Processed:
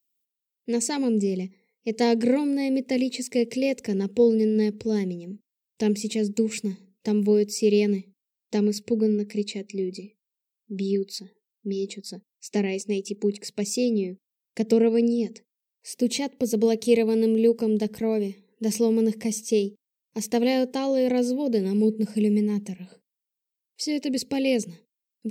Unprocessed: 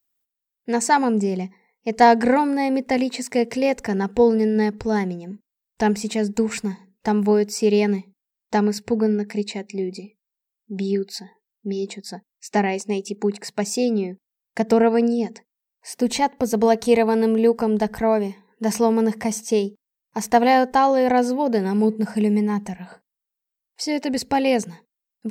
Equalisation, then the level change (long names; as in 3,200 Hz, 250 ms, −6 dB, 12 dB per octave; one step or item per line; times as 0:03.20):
high-pass filter 130 Hz
flat-topped bell 1,100 Hz −16 dB
−2.0 dB